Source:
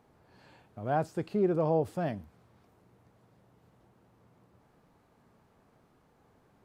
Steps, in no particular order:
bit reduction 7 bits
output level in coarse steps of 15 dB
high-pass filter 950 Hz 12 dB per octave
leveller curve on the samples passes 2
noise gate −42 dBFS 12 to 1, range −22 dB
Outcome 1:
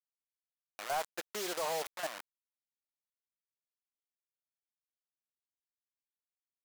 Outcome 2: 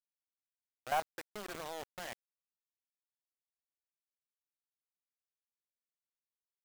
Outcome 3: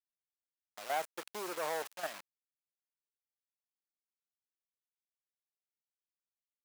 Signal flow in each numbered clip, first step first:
noise gate, then output level in coarse steps, then bit reduction, then high-pass filter, then leveller curve on the samples
high-pass filter, then leveller curve on the samples, then noise gate, then output level in coarse steps, then bit reduction
output level in coarse steps, then leveller curve on the samples, then noise gate, then bit reduction, then high-pass filter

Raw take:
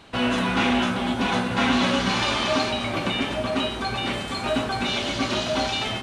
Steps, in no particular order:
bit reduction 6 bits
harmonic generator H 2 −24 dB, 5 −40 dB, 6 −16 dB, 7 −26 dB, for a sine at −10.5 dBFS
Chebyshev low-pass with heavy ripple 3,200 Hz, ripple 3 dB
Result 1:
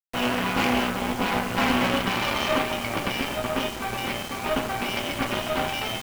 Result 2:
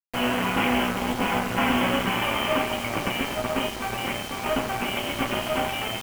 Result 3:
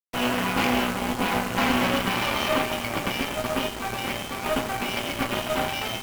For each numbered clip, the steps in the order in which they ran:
Chebyshev low-pass with heavy ripple, then harmonic generator, then bit reduction
harmonic generator, then Chebyshev low-pass with heavy ripple, then bit reduction
Chebyshev low-pass with heavy ripple, then bit reduction, then harmonic generator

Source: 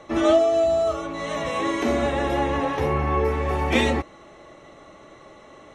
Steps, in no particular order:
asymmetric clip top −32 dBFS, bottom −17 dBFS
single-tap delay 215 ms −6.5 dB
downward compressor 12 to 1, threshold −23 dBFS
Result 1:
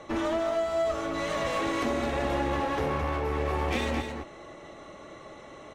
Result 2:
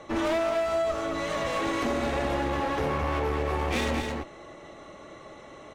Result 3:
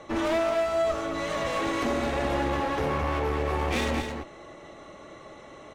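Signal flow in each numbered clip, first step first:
downward compressor, then asymmetric clip, then single-tap delay
asymmetric clip, then single-tap delay, then downward compressor
asymmetric clip, then downward compressor, then single-tap delay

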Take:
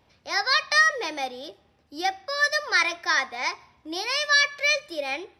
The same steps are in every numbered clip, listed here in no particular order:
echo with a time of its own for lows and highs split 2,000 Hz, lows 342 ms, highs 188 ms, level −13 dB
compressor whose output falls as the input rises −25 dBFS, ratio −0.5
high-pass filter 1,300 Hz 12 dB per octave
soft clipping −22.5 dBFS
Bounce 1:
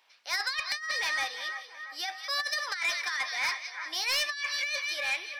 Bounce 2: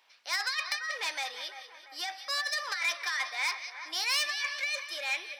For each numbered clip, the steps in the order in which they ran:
echo with a time of its own for lows and highs, then compressor whose output falls as the input rises, then high-pass filter, then soft clipping
compressor whose output falls as the input rises, then echo with a time of its own for lows and highs, then soft clipping, then high-pass filter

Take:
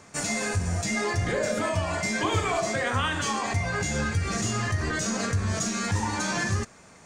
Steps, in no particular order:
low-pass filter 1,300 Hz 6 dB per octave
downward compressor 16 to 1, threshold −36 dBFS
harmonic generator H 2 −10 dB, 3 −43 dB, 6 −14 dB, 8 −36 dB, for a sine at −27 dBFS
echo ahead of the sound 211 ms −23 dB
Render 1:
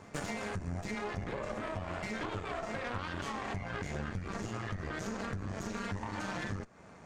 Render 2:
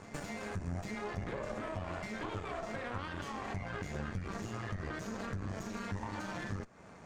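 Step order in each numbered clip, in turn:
low-pass filter, then downward compressor, then harmonic generator, then echo ahead of the sound
echo ahead of the sound, then downward compressor, then harmonic generator, then low-pass filter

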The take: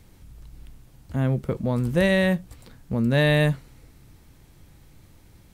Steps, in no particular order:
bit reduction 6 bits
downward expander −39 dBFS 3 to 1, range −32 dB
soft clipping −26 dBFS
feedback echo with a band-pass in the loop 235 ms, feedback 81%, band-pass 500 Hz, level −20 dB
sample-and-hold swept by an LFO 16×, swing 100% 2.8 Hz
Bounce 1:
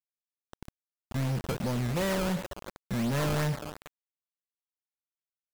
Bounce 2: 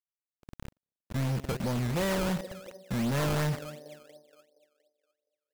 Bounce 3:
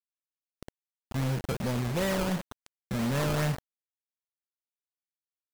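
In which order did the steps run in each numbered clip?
feedback echo with a band-pass in the loop, then sample-and-hold swept by an LFO, then downward expander, then bit reduction, then soft clipping
bit reduction, then feedback echo with a band-pass in the loop, then soft clipping, then downward expander, then sample-and-hold swept by an LFO
soft clipping, then feedback echo with a band-pass in the loop, then sample-and-hold swept by an LFO, then downward expander, then bit reduction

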